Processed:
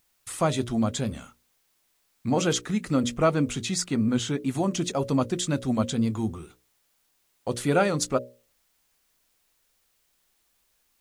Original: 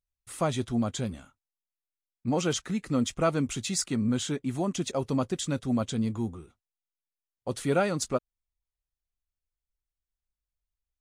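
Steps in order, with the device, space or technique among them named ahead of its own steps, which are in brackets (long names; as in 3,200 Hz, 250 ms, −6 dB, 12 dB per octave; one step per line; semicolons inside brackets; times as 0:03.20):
mains-hum notches 60/120/180/240/300/360/420/480/540/600 Hz
0:03.00–0:04.39: high-shelf EQ 5,100 Hz −5.5 dB
noise-reduction cassette on a plain deck (one half of a high-frequency compander encoder only; tape wow and flutter; white noise bed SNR 42 dB)
level +4 dB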